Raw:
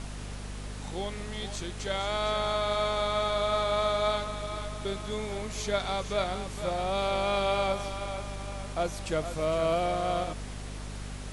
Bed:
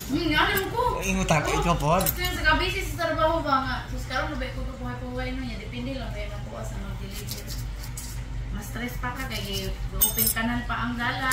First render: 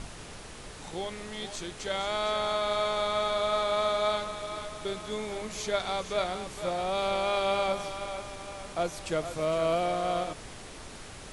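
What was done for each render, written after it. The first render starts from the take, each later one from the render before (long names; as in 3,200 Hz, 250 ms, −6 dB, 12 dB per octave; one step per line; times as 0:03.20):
hum removal 50 Hz, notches 5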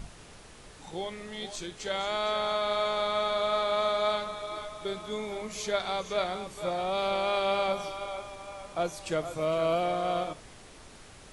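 noise reduction from a noise print 6 dB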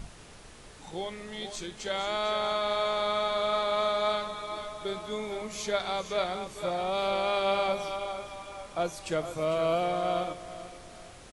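repeating echo 446 ms, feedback 38%, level −15 dB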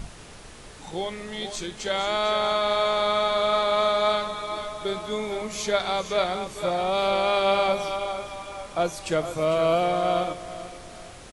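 level +5.5 dB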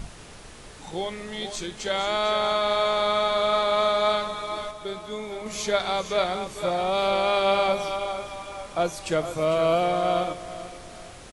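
0:04.71–0:05.46: clip gain −4.5 dB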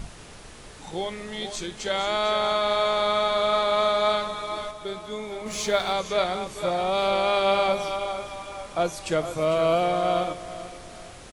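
0:05.47–0:05.93: mu-law and A-law mismatch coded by mu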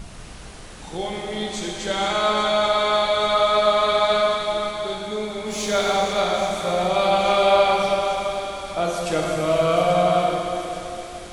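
delay with a high-pass on its return 833 ms, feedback 69%, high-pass 4,700 Hz, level −10 dB
dense smooth reverb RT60 3 s, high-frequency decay 0.9×, DRR −2 dB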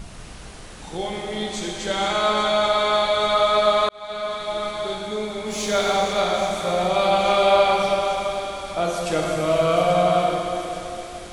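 0:03.89–0:04.80: fade in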